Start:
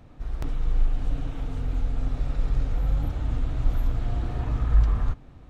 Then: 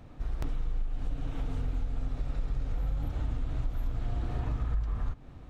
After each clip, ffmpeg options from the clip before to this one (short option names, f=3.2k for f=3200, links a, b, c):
-af "acompressor=threshold=-27dB:ratio=6"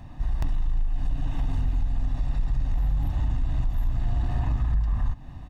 -filter_complex "[0:a]aecho=1:1:1.1:0.72,asplit=2[a][b];[b]aeval=exprs='0.158*sin(PI/2*1.78*val(0)/0.158)':c=same,volume=-8dB[c];[a][c]amix=inputs=2:normalize=0,volume=-2.5dB"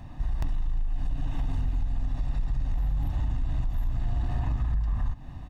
-af "acompressor=threshold=-24dB:ratio=2.5"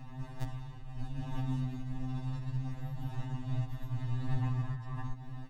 -af "afftfilt=real='re*2.45*eq(mod(b,6),0)':imag='im*2.45*eq(mod(b,6),0)':win_size=2048:overlap=0.75"